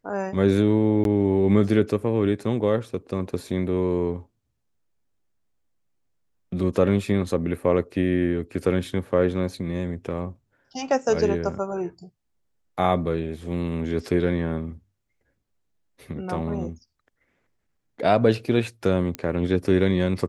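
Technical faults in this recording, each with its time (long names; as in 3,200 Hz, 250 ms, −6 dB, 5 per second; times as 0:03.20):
0:01.04–0:01.05: drop-out 12 ms
0:19.15: click −14 dBFS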